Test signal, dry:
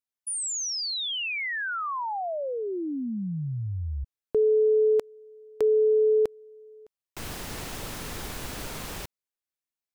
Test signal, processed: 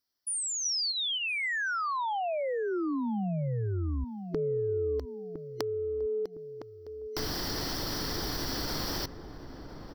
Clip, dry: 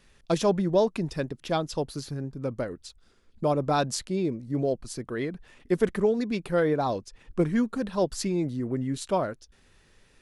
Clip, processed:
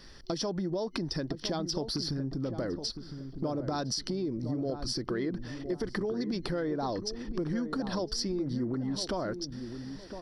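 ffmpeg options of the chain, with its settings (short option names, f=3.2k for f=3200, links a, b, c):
-filter_complex "[0:a]superequalizer=6b=1.78:12b=0.447:14b=2.82:15b=0.316:16b=0.355,acompressor=threshold=-37dB:ratio=10:attack=4.1:release=128:knee=1:detection=peak,asplit=2[a][b];[b]adelay=1010,lowpass=f=850:p=1,volume=-8dB,asplit=2[c][d];[d]adelay=1010,lowpass=f=850:p=1,volume=0.38,asplit=2[e][f];[f]adelay=1010,lowpass=f=850:p=1,volume=0.38,asplit=2[g][h];[h]adelay=1010,lowpass=f=850:p=1,volume=0.38[i];[c][e][g][i]amix=inputs=4:normalize=0[j];[a][j]amix=inputs=2:normalize=0,volume=7.5dB"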